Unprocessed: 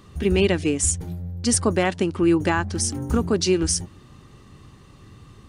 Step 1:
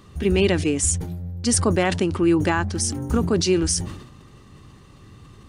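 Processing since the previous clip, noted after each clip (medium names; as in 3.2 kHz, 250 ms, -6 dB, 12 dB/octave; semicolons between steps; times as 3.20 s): decay stretcher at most 69 dB/s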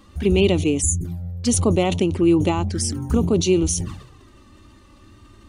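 touch-sensitive flanger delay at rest 3.9 ms, full sweep at -18.5 dBFS; time-frequency box 0.82–1.05 s, 430–6000 Hz -22 dB; trim +2.5 dB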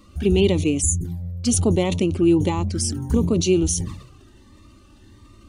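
Shepard-style phaser rising 1.5 Hz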